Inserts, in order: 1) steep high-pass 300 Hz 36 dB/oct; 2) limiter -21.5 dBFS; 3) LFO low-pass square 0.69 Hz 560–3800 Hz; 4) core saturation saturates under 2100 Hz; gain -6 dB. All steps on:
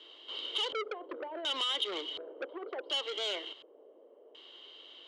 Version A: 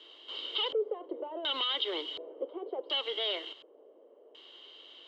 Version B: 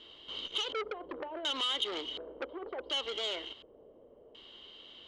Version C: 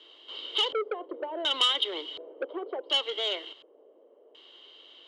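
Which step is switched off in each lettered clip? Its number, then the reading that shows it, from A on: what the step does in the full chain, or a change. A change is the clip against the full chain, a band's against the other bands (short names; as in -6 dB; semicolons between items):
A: 4, crest factor change -2.0 dB; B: 1, 250 Hz band +2.0 dB; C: 2, mean gain reduction 1.5 dB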